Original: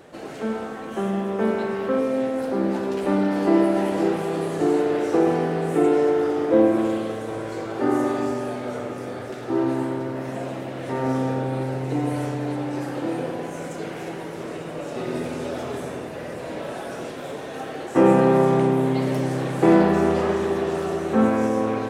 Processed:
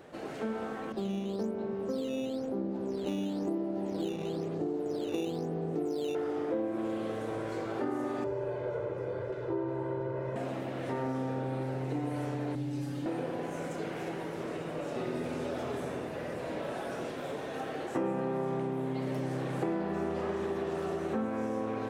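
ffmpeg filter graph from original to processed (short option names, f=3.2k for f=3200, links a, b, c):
-filter_complex "[0:a]asettb=1/sr,asplit=3[a][b][c];[a]atrim=end=0.924[d];[b]atrim=start=0.92:end=6.15,asetpts=PTS-STARTPTS,afade=t=in:d=0.004:c=qsin,afade=t=out:st=5.226:d=0.004:c=qsin,equalizer=f=1.8k:w=0.53:g=-14,acrusher=samples=8:mix=1:aa=0.000001:lfo=1:lforange=12.8:lforate=1,adynamicsmooth=sensitivity=4.5:basefreq=4.4k[e];[c]atrim=start=6.146[f];[d][e]acrossfade=d=0.004:c1=hsin:c2=qsin[g];[g][f]acrossfade=d=0.004:c1=qsin:c2=hsin,asettb=1/sr,asplit=3[h][i][j];[h]atrim=end=8.244[k];[i]atrim=start=8.24:end=10.36,asetpts=PTS-STARTPTS,afade=t=in:d=0.004:c=qsin,afade=t=out:st=2.116:d=0.004:c=qsin,lowpass=f=1k:p=1,aecho=1:1:2:0.97,atrim=end_sample=93492[l];[j]atrim=start=10.356[m];[k][l]acrossfade=d=0.004:c1=hsin:c2=qsin[n];[n][m]acrossfade=d=0.004:c1=qsin:c2=hsin,asettb=1/sr,asplit=3[o][p][q];[o]atrim=end=12.554[r];[p]atrim=start=12.55:end=13.06,asetpts=PTS-STARTPTS,afade=t=in:d=0.004:c=qsin,afade=t=out:st=0.506:d=0.004:c=qsin,acrossover=split=270|3000[s][t][u];[t]acompressor=threshold=-54dB:ratio=2:attack=3.2:release=140:knee=2.83:detection=peak[v];[s][v][u]amix=inputs=3:normalize=0,aecho=1:1:7.1:0.71,atrim=end_sample=22491[w];[q]atrim=start=13.056[x];[r][w]acrossfade=d=0.004:c1=hsin:c2=qsin[y];[y][x]acrossfade=d=0.004:c1=qsin:c2=hsin,equalizer=f=9.2k:t=o:w=1.8:g=-4,acompressor=threshold=-26dB:ratio=5,volume=-4.5dB"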